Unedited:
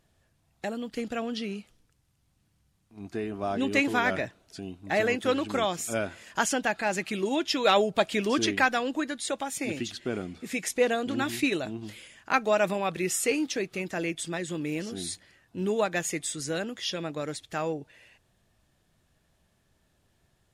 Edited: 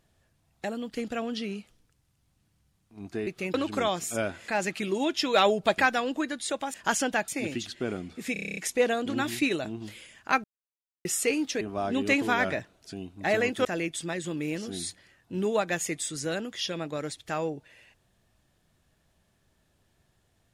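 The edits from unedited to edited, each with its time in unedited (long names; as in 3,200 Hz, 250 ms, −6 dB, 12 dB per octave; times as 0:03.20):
0:03.27–0:05.31: swap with 0:13.62–0:13.89
0:06.25–0:06.79: move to 0:09.53
0:08.09–0:08.57: remove
0:10.58: stutter 0.03 s, 9 plays
0:12.45–0:13.06: silence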